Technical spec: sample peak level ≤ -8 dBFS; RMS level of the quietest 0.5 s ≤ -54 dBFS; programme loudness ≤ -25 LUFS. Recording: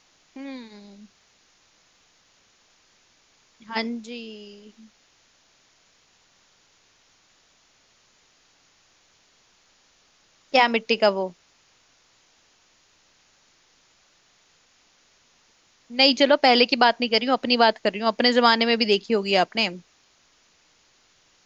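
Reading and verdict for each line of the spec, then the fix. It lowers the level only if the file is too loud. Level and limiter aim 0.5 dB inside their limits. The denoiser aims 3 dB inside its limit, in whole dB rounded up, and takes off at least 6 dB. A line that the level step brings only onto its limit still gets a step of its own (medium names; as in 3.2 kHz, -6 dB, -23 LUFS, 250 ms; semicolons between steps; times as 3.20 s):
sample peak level -4.0 dBFS: fail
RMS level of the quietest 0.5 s -61 dBFS: pass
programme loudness -20.5 LUFS: fail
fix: trim -5 dB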